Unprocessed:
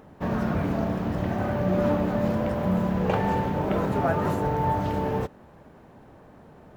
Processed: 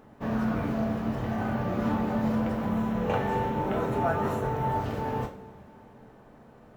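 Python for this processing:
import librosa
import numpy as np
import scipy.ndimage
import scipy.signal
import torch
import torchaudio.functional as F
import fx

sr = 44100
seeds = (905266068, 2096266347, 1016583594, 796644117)

y = fx.notch(x, sr, hz=4700.0, q=9.1, at=(2.67, 4.71))
y = fx.rev_double_slope(y, sr, seeds[0], early_s=0.34, late_s=3.4, knee_db=-22, drr_db=1.0)
y = y * 10.0 ** (-5.0 / 20.0)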